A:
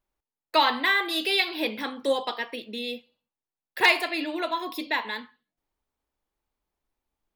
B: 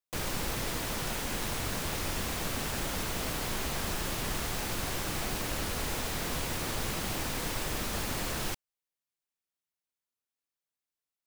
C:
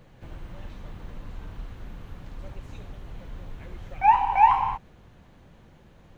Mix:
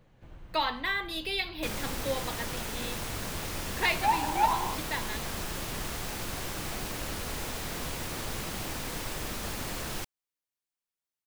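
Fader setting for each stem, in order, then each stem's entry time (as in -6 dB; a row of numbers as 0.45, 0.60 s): -8.0, -2.0, -8.5 dB; 0.00, 1.50, 0.00 s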